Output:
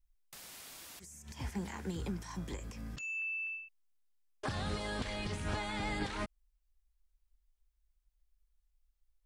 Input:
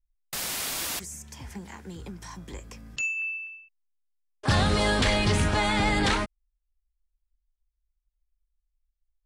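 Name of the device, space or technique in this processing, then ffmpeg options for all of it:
de-esser from a sidechain: -filter_complex "[0:a]asplit=2[a][b];[b]highpass=5.8k,apad=whole_len=408281[c];[a][c]sidechaincompress=threshold=-53dB:ratio=8:attack=1.2:release=87,volume=2.5dB"

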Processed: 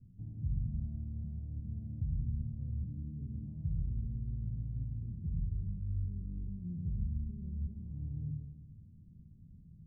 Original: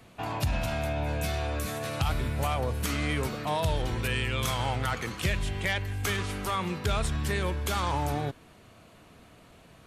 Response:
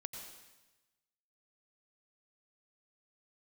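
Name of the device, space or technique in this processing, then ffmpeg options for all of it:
club heard from the street: -filter_complex "[0:a]alimiter=level_in=3dB:limit=-24dB:level=0:latency=1:release=220,volume=-3dB,lowpass=f=180:w=0.5412,lowpass=f=180:w=1.3066[a];[1:a]atrim=start_sample=2205[b];[a][b]afir=irnorm=-1:irlink=0,volume=5.5dB"

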